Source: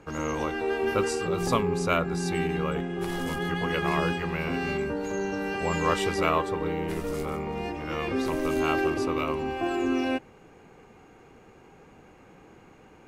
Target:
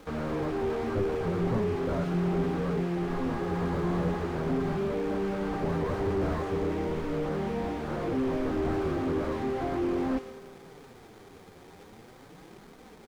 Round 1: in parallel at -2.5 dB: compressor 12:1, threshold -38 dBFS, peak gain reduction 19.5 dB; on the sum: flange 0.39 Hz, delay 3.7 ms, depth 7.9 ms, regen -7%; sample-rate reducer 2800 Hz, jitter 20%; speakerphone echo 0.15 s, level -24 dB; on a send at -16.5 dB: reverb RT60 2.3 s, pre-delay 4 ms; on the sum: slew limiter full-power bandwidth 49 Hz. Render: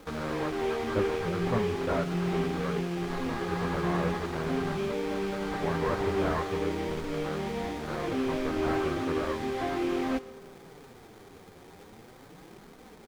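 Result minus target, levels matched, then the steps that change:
compressor: peak gain reduction +10 dB; slew limiter: distortion -5 dB
change: compressor 12:1, threshold -27 dBFS, peak gain reduction 9.5 dB; change: slew limiter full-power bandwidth 21.5 Hz

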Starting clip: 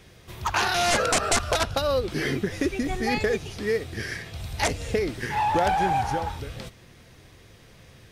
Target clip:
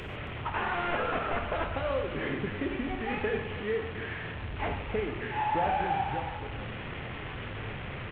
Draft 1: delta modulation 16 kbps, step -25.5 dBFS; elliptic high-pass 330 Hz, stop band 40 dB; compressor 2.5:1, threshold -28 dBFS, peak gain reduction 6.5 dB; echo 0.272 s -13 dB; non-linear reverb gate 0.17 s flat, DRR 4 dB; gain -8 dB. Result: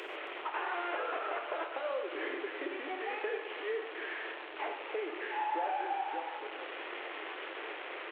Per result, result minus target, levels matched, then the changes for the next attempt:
compressor: peak gain reduction +6.5 dB; 250 Hz band -5.0 dB
remove: compressor 2.5:1, threshold -28 dBFS, peak gain reduction 6.5 dB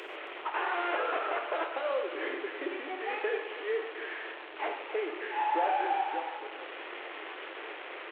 250 Hz band -5.5 dB
remove: elliptic high-pass 330 Hz, stop band 40 dB

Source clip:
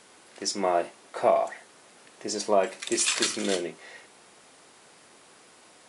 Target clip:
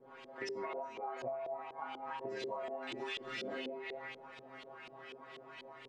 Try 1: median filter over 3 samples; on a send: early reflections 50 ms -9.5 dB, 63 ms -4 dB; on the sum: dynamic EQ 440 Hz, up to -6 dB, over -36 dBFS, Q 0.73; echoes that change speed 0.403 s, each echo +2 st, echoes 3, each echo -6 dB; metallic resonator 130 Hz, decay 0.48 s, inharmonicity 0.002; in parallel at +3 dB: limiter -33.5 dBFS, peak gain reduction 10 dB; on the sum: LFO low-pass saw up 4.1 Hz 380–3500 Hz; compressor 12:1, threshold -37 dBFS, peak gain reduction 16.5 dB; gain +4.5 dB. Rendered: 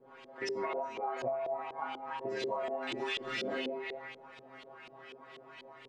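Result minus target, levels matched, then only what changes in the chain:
compressor: peak gain reduction -5.5 dB
change: compressor 12:1, threshold -43 dBFS, peak gain reduction 22 dB

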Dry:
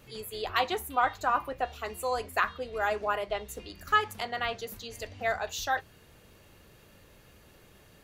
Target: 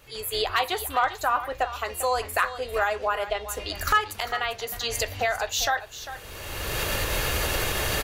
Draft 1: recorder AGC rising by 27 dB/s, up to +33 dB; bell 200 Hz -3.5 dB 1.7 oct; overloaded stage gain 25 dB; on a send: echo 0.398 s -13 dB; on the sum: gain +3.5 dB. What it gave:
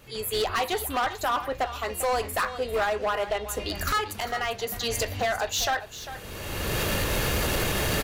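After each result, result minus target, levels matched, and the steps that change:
overloaded stage: distortion +23 dB; 250 Hz band +7.0 dB
change: overloaded stage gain 14.5 dB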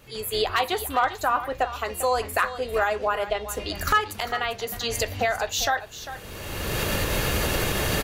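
250 Hz band +5.5 dB
change: bell 200 Hz -12.5 dB 1.7 oct

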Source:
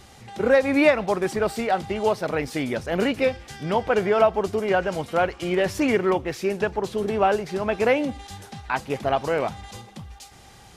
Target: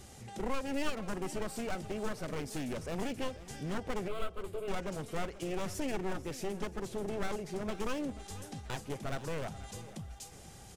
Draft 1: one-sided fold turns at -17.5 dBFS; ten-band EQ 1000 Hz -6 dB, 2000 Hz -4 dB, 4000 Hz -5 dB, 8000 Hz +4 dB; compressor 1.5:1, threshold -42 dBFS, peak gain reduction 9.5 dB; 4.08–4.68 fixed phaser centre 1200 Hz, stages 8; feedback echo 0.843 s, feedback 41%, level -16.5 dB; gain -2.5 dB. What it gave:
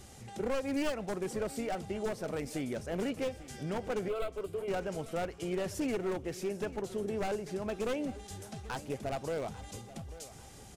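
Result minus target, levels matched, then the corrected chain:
echo 0.357 s late; one-sided fold: distortion -11 dB
one-sided fold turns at -25.5 dBFS; ten-band EQ 1000 Hz -6 dB, 2000 Hz -4 dB, 4000 Hz -5 dB, 8000 Hz +4 dB; compressor 1.5:1, threshold -42 dBFS, peak gain reduction 10 dB; 4.08–4.68 fixed phaser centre 1200 Hz, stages 8; feedback echo 0.486 s, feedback 41%, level -16.5 dB; gain -2.5 dB

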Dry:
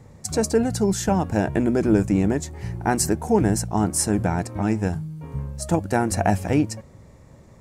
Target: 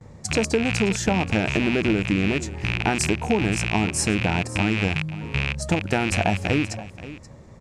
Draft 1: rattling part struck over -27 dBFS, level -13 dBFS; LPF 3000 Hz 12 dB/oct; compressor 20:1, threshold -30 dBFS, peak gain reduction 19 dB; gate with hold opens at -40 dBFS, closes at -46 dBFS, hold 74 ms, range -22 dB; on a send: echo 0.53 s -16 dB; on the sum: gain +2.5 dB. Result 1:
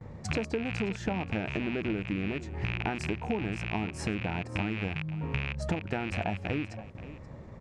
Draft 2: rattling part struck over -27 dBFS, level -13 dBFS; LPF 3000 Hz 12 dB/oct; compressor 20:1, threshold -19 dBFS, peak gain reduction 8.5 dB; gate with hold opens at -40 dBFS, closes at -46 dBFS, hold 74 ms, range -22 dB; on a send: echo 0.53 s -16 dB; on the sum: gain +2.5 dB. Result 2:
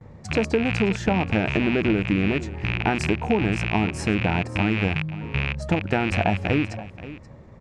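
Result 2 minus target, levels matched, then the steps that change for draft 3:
8000 Hz band -12.5 dB
change: LPF 7400 Hz 12 dB/oct

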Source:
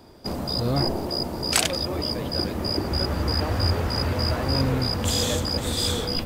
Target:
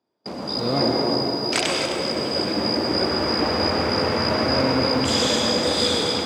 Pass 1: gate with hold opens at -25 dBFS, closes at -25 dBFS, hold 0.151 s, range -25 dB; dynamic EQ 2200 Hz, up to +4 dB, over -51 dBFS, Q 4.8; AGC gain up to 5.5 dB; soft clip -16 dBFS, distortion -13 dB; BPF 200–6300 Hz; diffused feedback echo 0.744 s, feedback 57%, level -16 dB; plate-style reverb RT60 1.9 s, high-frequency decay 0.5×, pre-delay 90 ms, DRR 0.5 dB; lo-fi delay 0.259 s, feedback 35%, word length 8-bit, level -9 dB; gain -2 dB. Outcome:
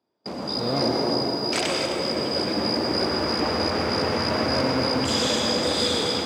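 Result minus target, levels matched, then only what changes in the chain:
soft clip: distortion +14 dB
change: soft clip -5.5 dBFS, distortion -27 dB

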